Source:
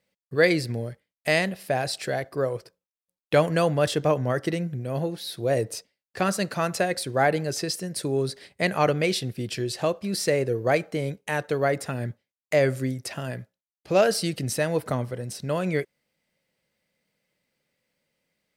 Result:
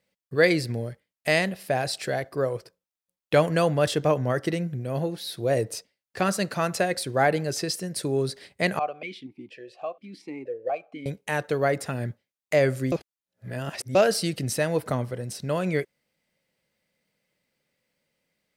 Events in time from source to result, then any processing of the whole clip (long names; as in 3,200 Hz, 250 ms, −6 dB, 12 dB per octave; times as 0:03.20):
0:08.79–0:11.06: formant filter that steps through the vowels 4.2 Hz
0:12.92–0:13.95: reverse